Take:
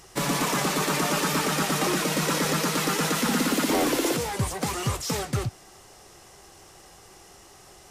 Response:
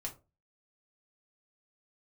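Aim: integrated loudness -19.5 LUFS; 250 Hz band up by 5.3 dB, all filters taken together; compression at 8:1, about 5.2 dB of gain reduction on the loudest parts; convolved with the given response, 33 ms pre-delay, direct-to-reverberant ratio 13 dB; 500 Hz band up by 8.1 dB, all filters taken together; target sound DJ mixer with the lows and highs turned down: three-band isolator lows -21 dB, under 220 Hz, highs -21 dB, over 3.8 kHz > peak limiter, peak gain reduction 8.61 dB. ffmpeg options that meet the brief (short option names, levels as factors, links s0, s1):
-filter_complex "[0:a]equalizer=f=250:t=o:g=8,equalizer=f=500:t=o:g=8,acompressor=threshold=0.126:ratio=8,asplit=2[s0][s1];[1:a]atrim=start_sample=2205,adelay=33[s2];[s1][s2]afir=irnorm=-1:irlink=0,volume=0.251[s3];[s0][s3]amix=inputs=2:normalize=0,acrossover=split=220 3800:gain=0.0891 1 0.0891[s4][s5][s6];[s4][s5][s6]amix=inputs=3:normalize=0,volume=3.16,alimiter=limit=0.282:level=0:latency=1"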